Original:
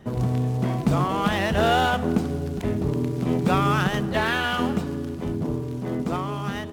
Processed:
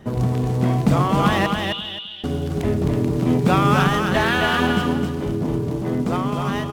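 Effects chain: 1.46–2.24 s: Butterworth band-pass 3.2 kHz, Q 3.7; on a send: feedback delay 262 ms, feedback 22%, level -4 dB; on the sum: trim +3.5 dB

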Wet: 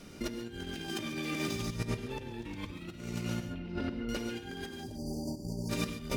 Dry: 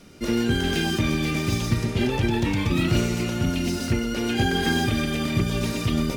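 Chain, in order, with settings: 0.89–1.56 s: high-pass 190 Hz 12 dB/octave; 4.84–5.69 s: spectral selection erased 1–4.3 kHz; compressor with a negative ratio -29 dBFS, ratio -0.5; 3.46–4.09 s: distance through air 410 m; gated-style reverb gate 160 ms rising, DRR 8.5 dB; trim -8 dB

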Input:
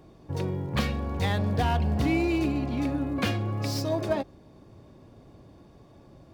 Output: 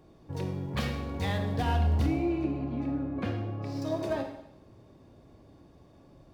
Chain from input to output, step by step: 2.06–3.82 s: low-pass 1 kHz 6 dB/octave; reverberation RT60 0.80 s, pre-delay 24 ms, DRR 4.5 dB; trim -5 dB

